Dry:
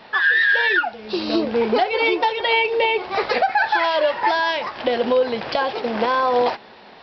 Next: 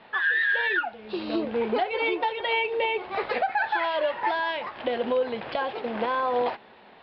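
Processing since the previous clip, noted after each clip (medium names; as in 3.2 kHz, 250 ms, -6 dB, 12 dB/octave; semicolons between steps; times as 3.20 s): low-pass 3.6 kHz 24 dB/octave; trim -7 dB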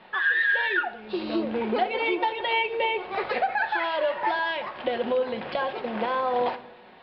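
simulated room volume 2500 m³, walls furnished, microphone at 1 m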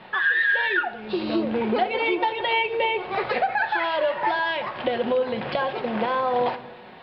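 in parallel at -1 dB: compression, threshold -33 dBFS, peak gain reduction 13 dB; on the sum: peaking EQ 130 Hz +7.5 dB 0.73 oct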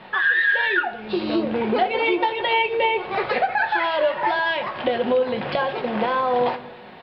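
doubling 20 ms -11.5 dB; trim +2 dB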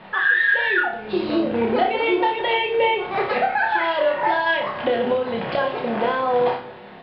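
treble shelf 4 kHz -6.5 dB; on a send: flutter echo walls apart 5.2 m, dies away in 0.37 s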